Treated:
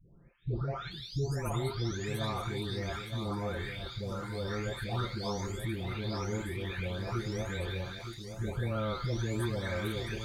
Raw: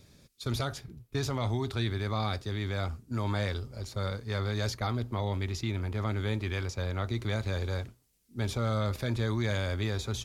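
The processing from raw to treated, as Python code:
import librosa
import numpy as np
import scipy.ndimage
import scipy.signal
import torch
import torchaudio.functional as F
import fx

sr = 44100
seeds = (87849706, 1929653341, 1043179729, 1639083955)

y = fx.spec_delay(x, sr, highs='late', ms=914)
y = fx.low_shelf(y, sr, hz=74.0, db=9.0)
y = y + 10.0 ** (-8.5 / 20.0) * np.pad(y, (int(916 * sr / 1000.0), 0))[:len(y)]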